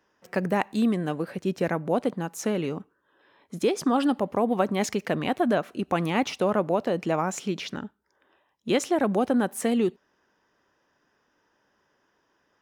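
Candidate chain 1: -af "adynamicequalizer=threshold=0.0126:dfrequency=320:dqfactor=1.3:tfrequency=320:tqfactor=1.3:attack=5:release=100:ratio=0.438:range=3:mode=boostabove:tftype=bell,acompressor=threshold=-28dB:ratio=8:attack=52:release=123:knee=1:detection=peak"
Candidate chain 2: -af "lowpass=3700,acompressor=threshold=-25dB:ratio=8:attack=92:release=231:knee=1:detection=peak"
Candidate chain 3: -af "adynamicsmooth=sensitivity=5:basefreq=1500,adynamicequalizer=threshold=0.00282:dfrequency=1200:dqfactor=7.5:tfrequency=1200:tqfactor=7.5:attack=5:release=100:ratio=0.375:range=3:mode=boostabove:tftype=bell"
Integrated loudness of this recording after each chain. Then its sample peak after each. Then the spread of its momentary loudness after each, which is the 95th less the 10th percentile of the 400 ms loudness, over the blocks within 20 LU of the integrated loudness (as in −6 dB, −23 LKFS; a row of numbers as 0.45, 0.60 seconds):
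−29.0, −28.0, −26.5 LKFS; −9.0, −10.5, −8.5 dBFS; 5, 7, 9 LU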